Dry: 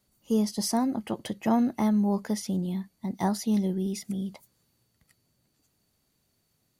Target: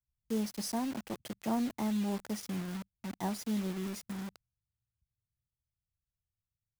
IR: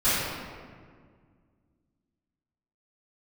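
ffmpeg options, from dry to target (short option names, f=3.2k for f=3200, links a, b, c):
-filter_complex "[0:a]acrossover=split=110[a][b];[b]acrusher=bits=5:mix=0:aa=0.000001[c];[a][c]amix=inputs=2:normalize=0,volume=-8.5dB"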